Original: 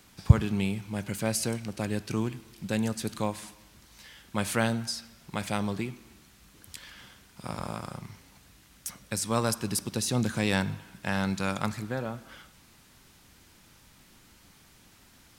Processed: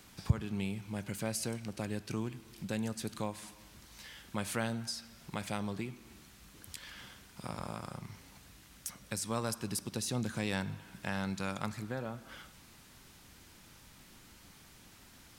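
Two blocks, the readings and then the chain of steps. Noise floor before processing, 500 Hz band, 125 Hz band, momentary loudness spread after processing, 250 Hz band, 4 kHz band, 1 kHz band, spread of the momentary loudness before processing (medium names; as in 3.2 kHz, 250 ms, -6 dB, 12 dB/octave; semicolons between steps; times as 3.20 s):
-58 dBFS, -7.5 dB, -9.0 dB, 21 LU, -7.5 dB, -6.5 dB, -7.5 dB, 17 LU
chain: compression 1.5:1, threshold -45 dBFS, peak gain reduction 13 dB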